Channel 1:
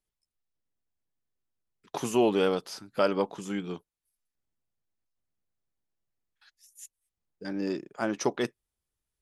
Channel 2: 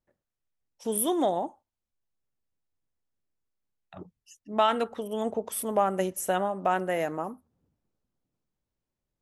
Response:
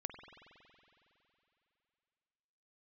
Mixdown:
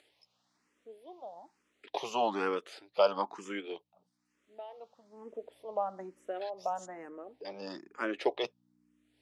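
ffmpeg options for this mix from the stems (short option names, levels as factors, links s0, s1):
-filter_complex "[0:a]acompressor=mode=upward:threshold=0.00794:ratio=2.5,volume=1.41[s0];[1:a]tiltshelf=f=1500:g=9.5,aeval=exprs='val(0)+0.0141*(sin(2*PI*60*n/s)+sin(2*PI*2*60*n/s)/2+sin(2*PI*3*60*n/s)/3+sin(2*PI*4*60*n/s)/4+sin(2*PI*5*60*n/s)/5)':c=same,volume=0.251,afade=t=in:st=5.02:d=0.49:silence=0.281838[s1];[s0][s1]amix=inputs=2:normalize=0,highpass=460,lowpass=4600,equalizer=f=1500:t=o:w=0.33:g=-3.5,asplit=2[s2][s3];[s3]afreqshift=1.1[s4];[s2][s4]amix=inputs=2:normalize=1"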